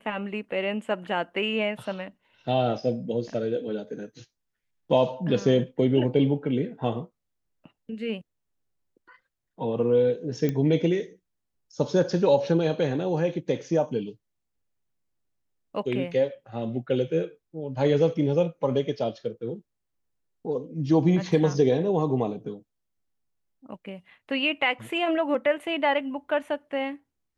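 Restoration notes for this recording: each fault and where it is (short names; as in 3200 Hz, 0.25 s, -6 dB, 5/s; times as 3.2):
10.49 pop -15 dBFS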